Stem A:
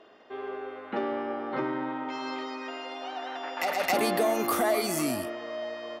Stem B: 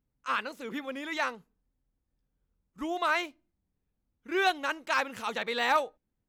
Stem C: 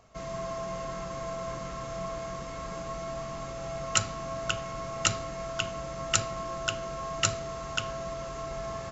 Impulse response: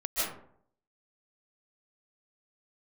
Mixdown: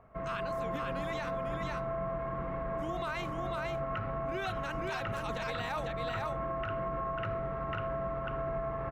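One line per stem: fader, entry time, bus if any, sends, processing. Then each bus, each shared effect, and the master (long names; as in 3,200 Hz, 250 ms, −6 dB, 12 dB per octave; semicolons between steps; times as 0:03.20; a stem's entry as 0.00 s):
muted
−4.5 dB, 0.00 s, no send, echo send −4.5 dB, no processing
+1.0 dB, 0.00 s, no send, echo send −4 dB, low-pass filter 1,900 Hz 24 dB per octave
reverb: not used
echo: single-tap delay 497 ms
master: brickwall limiter −27 dBFS, peak gain reduction 10.5 dB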